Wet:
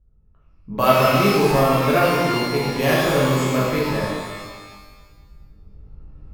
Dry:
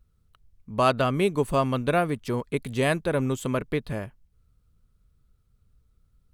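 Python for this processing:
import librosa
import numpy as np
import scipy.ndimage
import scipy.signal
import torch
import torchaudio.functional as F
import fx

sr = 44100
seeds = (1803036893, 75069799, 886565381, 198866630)

y = fx.recorder_agc(x, sr, target_db=-16.0, rise_db_per_s=6.8, max_gain_db=30)
y = np.repeat(y[::3], 3)[:len(y)]
y = fx.env_lowpass(y, sr, base_hz=610.0, full_db=-23.0)
y = fx.rev_shimmer(y, sr, seeds[0], rt60_s=1.4, semitones=12, shimmer_db=-8, drr_db=-7.0)
y = F.gain(torch.from_numpy(y), -1.0).numpy()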